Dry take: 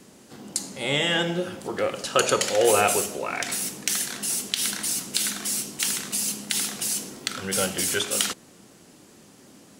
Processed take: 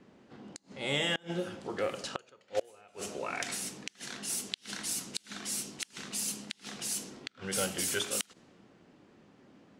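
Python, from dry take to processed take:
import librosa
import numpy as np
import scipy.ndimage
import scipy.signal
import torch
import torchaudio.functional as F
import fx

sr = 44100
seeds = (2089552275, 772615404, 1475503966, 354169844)

y = fx.gate_flip(x, sr, shuts_db=-11.0, range_db=-30)
y = fx.env_lowpass(y, sr, base_hz=2400.0, full_db=-22.0)
y = F.gain(torch.from_numpy(y), -7.0).numpy()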